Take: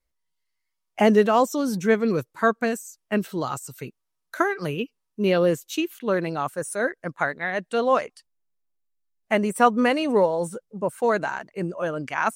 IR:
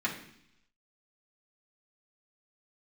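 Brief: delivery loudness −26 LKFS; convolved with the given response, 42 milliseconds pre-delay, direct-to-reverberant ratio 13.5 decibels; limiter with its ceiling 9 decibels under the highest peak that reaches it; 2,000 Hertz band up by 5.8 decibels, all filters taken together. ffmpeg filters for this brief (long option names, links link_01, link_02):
-filter_complex "[0:a]equalizer=frequency=2000:width_type=o:gain=7.5,alimiter=limit=-12.5dB:level=0:latency=1,asplit=2[link_01][link_02];[1:a]atrim=start_sample=2205,adelay=42[link_03];[link_02][link_03]afir=irnorm=-1:irlink=0,volume=-21dB[link_04];[link_01][link_04]amix=inputs=2:normalize=0,volume=-1dB"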